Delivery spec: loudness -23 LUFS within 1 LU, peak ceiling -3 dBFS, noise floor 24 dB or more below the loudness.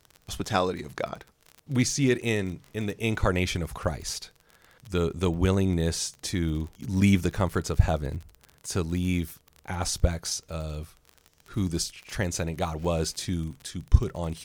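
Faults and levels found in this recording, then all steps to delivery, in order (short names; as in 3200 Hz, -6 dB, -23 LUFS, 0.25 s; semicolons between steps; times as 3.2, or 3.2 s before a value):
ticks 33/s; loudness -28.5 LUFS; peak -3.5 dBFS; loudness target -23.0 LUFS
-> de-click; gain +5.5 dB; limiter -3 dBFS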